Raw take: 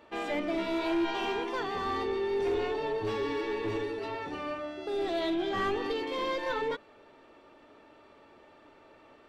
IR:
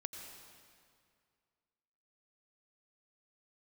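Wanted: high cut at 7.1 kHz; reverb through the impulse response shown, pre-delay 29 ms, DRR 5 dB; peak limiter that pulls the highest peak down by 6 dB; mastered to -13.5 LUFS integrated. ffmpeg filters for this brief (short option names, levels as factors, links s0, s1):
-filter_complex "[0:a]lowpass=7100,alimiter=level_in=1.88:limit=0.0631:level=0:latency=1,volume=0.531,asplit=2[s0][s1];[1:a]atrim=start_sample=2205,adelay=29[s2];[s1][s2]afir=irnorm=-1:irlink=0,volume=0.708[s3];[s0][s3]amix=inputs=2:normalize=0,volume=12.6"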